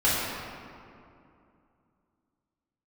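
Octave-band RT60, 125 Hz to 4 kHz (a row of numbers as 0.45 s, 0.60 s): 3.0 s, 3.1 s, 2.7 s, 2.5 s, 2.0 s, 1.3 s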